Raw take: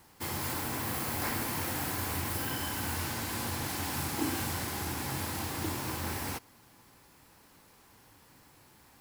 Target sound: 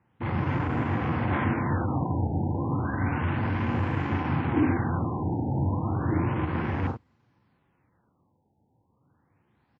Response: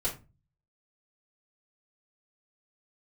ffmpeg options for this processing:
-filter_complex "[0:a]highpass=f=64:w=0.5412,highpass=f=64:w=1.3066,highshelf=f=6.2k:g=-4.5,asplit=2[a][b];[b]adelay=42,volume=-4dB[c];[a][c]amix=inputs=2:normalize=0,asplit=2[d][e];[1:a]atrim=start_sample=2205,lowshelf=f=69:g=9[f];[e][f]afir=irnorm=-1:irlink=0,volume=-25.5dB[g];[d][g]amix=inputs=2:normalize=0,atempo=0.92,afwtdn=0.01,bass=f=250:g=8,treble=f=4k:g=-13,afftfilt=real='re*lt(b*sr/1024,930*pow(7900/930,0.5+0.5*sin(2*PI*0.32*pts/sr)))':imag='im*lt(b*sr/1024,930*pow(7900/930,0.5+0.5*sin(2*PI*0.32*pts/sr)))':win_size=1024:overlap=0.75,volume=5dB"

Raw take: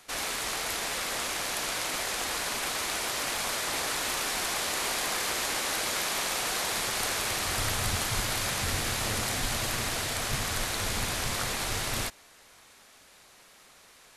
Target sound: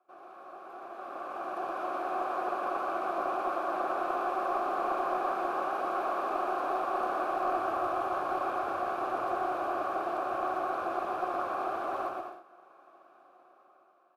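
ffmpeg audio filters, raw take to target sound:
-filter_complex "[0:a]asplit=3[a][b][c];[a]bandpass=f=730:t=q:w=8,volume=0dB[d];[b]bandpass=f=1.09k:t=q:w=8,volume=-6dB[e];[c]bandpass=f=2.44k:t=q:w=8,volume=-9dB[f];[d][e][f]amix=inputs=3:normalize=0,lowshelf=f=280:g=-10,aecho=1:1:120|204|262.8|304|332.8:0.631|0.398|0.251|0.158|0.1,asplit=2[g][h];[h]aeval=exprs='clip(val(0),-1,0.0112)':c=same,volume=-11dB[i];[g][i]amix=inputs=2:normalize=0,firequalizer=gain_entry='entry(130,0);entry(190,-21);entry(300,0);entry(450,-4);entry(1500,0);entry(2400,-20);entry(4700,-19);entry(7300,-21);entry(14000,-5)':delay=0.05:min_phase=1,asplit=2[j][k];[k]asetrate=22050,aresample=44100,atempo=2,volume=-7dB[l];[j][l]amix=inputs=2:normalize=0,dynaudnorm=f=300:g=9:m=15.5dB,volume=-4dB"

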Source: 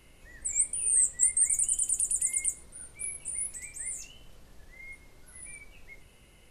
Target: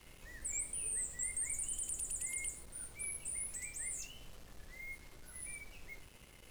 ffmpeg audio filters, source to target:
-filter_complex "[0:a]acrossover=split=3100[a][b];[b]acompressor=threshold=-36dB:ratio=4:attack=1:release=60[c];[a][c]amix=inputs=2:normalize=0,acrusher=bits=8:mix=0:aa=0.5,volume=-1.5dB"

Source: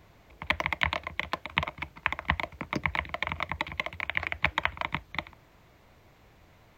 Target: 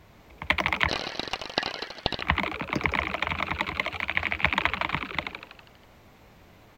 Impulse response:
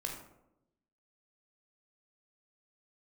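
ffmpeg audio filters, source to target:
-filter_complex "[0:a]asplit=9[a][b][c][d][e][f][g][h][i];[b]adelay=81,afreqshift=120,volume=-6.5dB[j];[c]adelay=162,afreqshift=240,volume=-10.8dB[k];[d]adelay=243,afreqshift=360,volume=-15.1dB[l];[e]adelay=324,afreqshift=480,volume=-19.4dB[m];[f]adelay=405,afreqshift=600,volume=-23.7dB[n];[g]adelay=486,afreqshift=720,volume=-28dB[o];[h]adelay=567,afreqshift=840,volume=-32.3dB[p];[i]adelay=648,afreqshift=960,volume=-36.6dB[q];[a][j][k][l][m][n][o][p][q]amix=inputs=9:normalize=0,asettb=1/sr,asplit=3[r][s][t];[r]atrim=end=0.884[u];[s]atrim=start=0.88:end=2.22,asetpts=PTS-STARTPTS,afade=t=in:d=0.004:c=qsin,afade=t=out:st=1.336:d=0.004:c=qsin,aeval=exprs='val(0)*sin(2*PI*1800*n/s)':c=same[v];[t]atrim=start=2.216[w];[u][v]acrossfade=d=0.004:c1=hsin:c2=qsin[x];[x][w]acrossfade=d=0.004:c1=qsin:c2=hsin,volume=3dB" -ar 44100 -c:a libvorbis -b:a 64k

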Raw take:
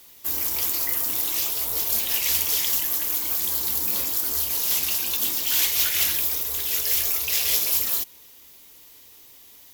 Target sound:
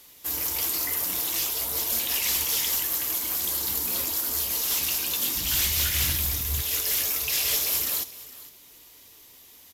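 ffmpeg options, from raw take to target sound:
-filter_complex "[0:a]asplit=3[a][b][c];[a]afade=t=out:st=5.35:d=0.02[d];[b]asubboost=boost=10:cutoff=150,afade=t=in:st=5.35:d=0.02,afade=t=out:st=6.61:d=0.02[e];[c]afade=t=in:st=6.61:d=0.02[f];[d][e][f]amix=inputs=3:normalize=0,volume=18.5dB,asoftclip=hard,volume=-18.5dB,aecho=1:1:73|456:0.112|0.126" -ar 32000 -c:a aac -b:a 96k

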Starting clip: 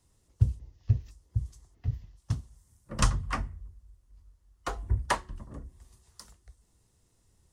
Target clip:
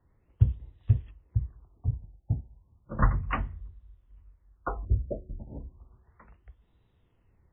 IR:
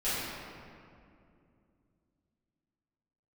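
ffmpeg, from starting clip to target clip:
-filter_complex "[0:a]asettb=1/sr,asplit=3[a][b][c];[a]atrim=end=4.854[d];[b]atrim=start=4.85:end=5.39,asetpts=PTS-STARTPTS,afade=t=in:d=0.004:c=qsin,afade=t=out:st=0.536:d=0.004:c=qsin,asuperstop=centerf=1300:order=20:qfactor=0.67[e];[c]atrim=start=5.386[f];[d][e]acrossfade=d=0.004:c1=hsin:c2=qsin[g];[g][f]acrossfade=d=0.004:c1=qsin:c2=hsin,afftfilt=real='re*lt(b*sr/1024,890*pow(4000/890,0.5+0.5*sin(2*PI*0.33*pts/sr)))':imag='im*lt(b*sr/1024,890*pow(4000/890,0.5+0.5*sin(2*PI*0.33*pts/sr)))':win_size=1024:overlap=0.75,volume=2dB"

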